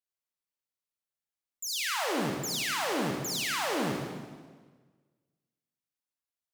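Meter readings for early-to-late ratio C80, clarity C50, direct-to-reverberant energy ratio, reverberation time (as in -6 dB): 3.5 dB, 1.0 dB, 0.0 dB, 1.5 s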